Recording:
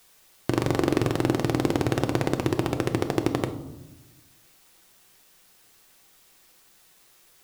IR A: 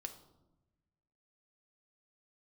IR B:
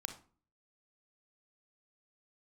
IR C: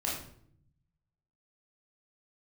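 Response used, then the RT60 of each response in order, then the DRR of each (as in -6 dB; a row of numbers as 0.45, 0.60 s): A; 1.0, 0.40, 0.65 s; 5.5, 6.0, -5.0 dB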